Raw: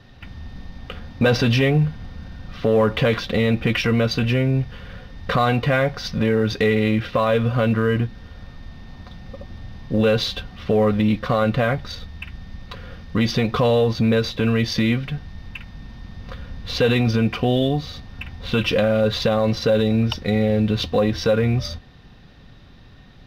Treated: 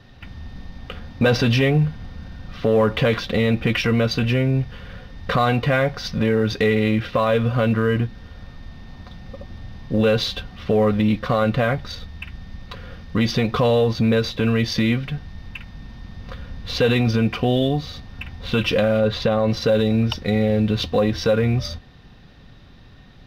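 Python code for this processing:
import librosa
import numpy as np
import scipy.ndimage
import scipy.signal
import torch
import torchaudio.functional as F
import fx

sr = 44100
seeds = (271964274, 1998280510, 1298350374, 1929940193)

y = fx.high_shelf(x, sr, hz=fx.line((18.98, 6100.0), (19.49, 4100.0)), db=-10.0, at=(18.98, 19.49), fade=0.02)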